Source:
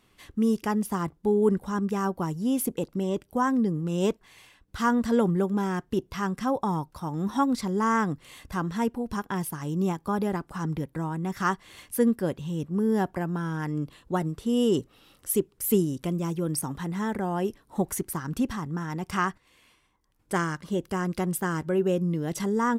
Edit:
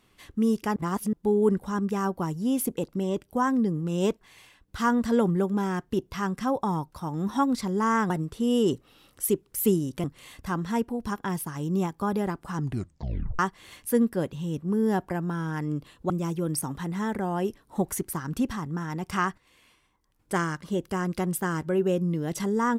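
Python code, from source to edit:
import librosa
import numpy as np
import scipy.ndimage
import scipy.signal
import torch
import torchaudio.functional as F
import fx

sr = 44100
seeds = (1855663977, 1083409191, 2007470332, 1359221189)

y = fx.edit(x, sr, fx.reverse_span(start_s=0.76, length_s=0.37),
    fx.tape_stop(start_s=10.63, length_s=0.82),
    fx.move(start_s=14.16, length_s=1.94, to_s=8.1), tone=tone)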